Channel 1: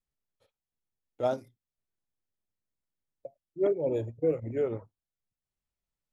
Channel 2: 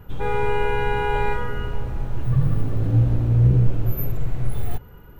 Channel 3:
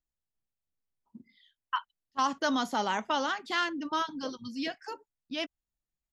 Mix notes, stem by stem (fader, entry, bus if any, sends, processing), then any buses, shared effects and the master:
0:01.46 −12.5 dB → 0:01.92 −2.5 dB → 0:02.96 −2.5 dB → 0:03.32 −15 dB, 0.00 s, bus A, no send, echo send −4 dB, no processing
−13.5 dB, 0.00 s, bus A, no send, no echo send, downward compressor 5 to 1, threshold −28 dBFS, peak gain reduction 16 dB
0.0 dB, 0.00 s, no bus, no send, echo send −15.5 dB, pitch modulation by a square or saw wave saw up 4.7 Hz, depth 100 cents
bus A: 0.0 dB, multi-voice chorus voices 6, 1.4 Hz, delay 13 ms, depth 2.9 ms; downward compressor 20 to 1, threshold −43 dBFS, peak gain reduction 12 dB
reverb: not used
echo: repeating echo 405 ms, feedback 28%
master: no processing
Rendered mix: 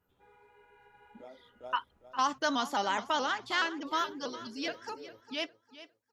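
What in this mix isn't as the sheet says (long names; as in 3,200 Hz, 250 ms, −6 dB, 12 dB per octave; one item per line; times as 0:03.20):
stem 2 −13.5 dB → −22.0 dB
master: extra high-pass filter 360 Hz 6 dB per octave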